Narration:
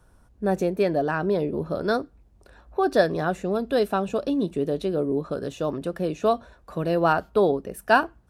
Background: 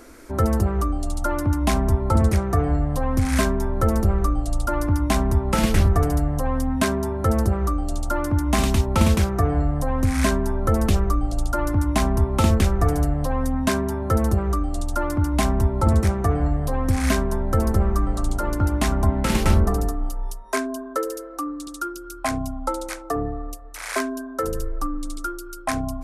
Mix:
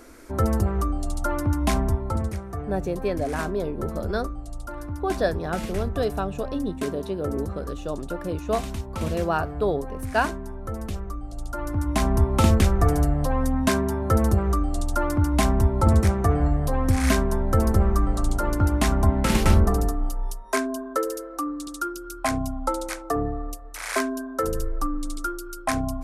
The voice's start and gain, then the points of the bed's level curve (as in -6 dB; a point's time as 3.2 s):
2.25 s, -4.0 dB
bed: 1.81 s -2 dB
2.41 s -12 dB
11.24 s -12 dB
12.16 s 0 dB